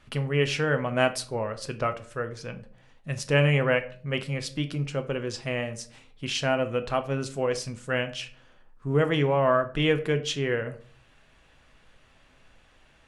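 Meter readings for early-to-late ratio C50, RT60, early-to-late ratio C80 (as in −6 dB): 15.0 dB, 0.45 s, 18.5 dB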